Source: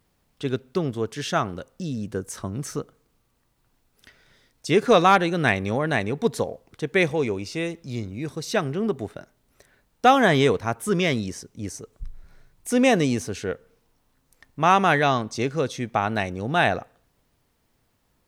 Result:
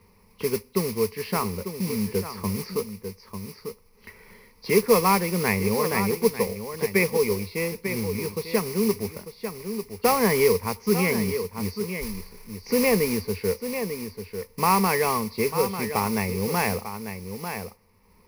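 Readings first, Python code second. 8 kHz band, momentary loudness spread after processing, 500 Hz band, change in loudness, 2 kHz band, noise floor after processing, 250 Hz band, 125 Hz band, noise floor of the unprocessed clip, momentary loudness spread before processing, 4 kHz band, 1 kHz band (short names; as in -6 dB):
+5.0 dB, 15 LU, +0.5 dB, -2.0 dB, -3.5 dB, -58 dBFS, -1.0 dB, -1.5 dB, -69 dBFS, 16 LU, -2.5 dB, -4.0 dB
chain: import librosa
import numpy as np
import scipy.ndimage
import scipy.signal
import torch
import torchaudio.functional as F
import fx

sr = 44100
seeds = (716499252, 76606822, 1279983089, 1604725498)

p1 = fx.freq_compress(x, sr, knee_hz=2700.0, ratio=1.5)
p2 = fx.air_absorb(p1, sr, metres=260.0)
p3 = p2 + fx.echo_single(p2, sr, ms=895, db=-12.0, dry=0)
p4 = fx.mod_noise(p3, sr, seeds[0], snr_db=10)
p5 = fx.ripple_eq(p4, sr, per_octave=0.86, db=15)
p6 = fx.band_squash(p5, sr, depth_pct=40)
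y = p6 * 10.0 ** (-3.0 / 20.0)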